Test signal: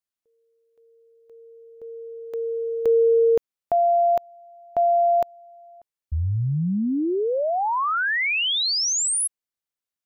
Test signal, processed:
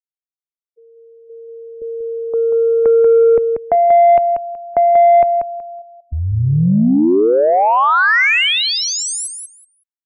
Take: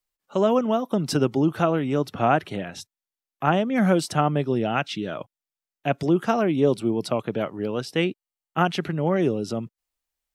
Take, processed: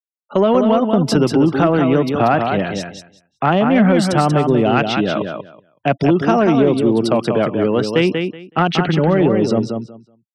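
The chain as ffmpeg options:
-filter_complex "[0:a]lowshelf=f=69:g=11,asplit=2[a][b];[b]alimiter=limit=-16.5dB:level=0:latency=1:release=15,volume=-3dB[c];[a][c]amix=inputs=2:normalize=0,afftfilt=real='re*gte(hypot(re,im),0.0126)':imag='im*gte(hypot(re,im),0.0126)':win_size=1024:overlap=0.75,acrossover=split=140|2400[d][e][f];[d]acompressor=threshold=-57dB:ratio=1.5[g];[e]acompressor=threshold=-16dB:ratio=6[h];[f]acompressor=threshold=-26dB:ratio=2[i];[g][h][i]amix=inputs=3:normalize=0,highshelf=f=6k:g=-9.5,asplit=2[j][k];[k]aecho=0:1:187|374|561:0.501|0.0852|0.0145[l];[j][l]amix=inputs=2:normalize=0,acontrast=75"

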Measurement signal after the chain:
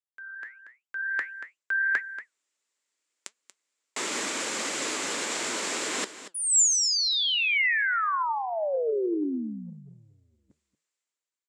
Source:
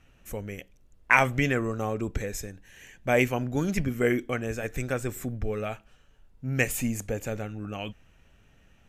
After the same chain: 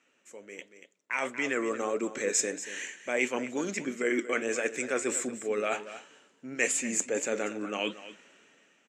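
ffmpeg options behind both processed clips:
-af "flanger=delay=3.9:depth=7.7:regen=78:speed=1.5:shape=triangular,areverse,acompressor=threshold=-41dB:ratio=10,areverse,highpass=f=270:w=0.5412,highpass=f=270:w=1.3066,equalizer=f=750:t=q:w=4:g=-6,equalizer=f=2.1k:t=q:w=4:g=3,equalizer=f=7.4k:t=q:w=4:g=9,lowpass=f=8.4k:w=0.5412,lowpass=f=8.4k:w=1.3066,aecho=1:1:234:0.211,dynaudnorm=f=200:g=11:m=16.5dB"

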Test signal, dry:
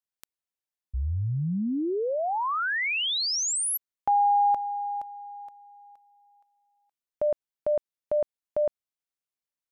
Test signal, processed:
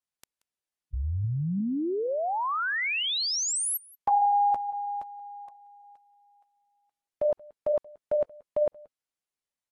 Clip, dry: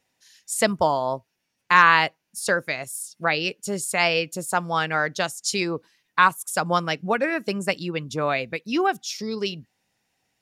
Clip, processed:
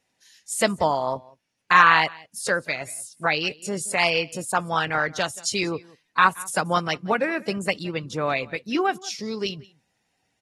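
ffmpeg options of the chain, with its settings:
-filter_complex "[0:a]asplit=2[a][b];[b]aecho=0:1:180:0.0668[c];[a][c]amix=inputs=2:normalize=0,volume=-1dB" -ar 48000 -c:a aac -b:a 32k

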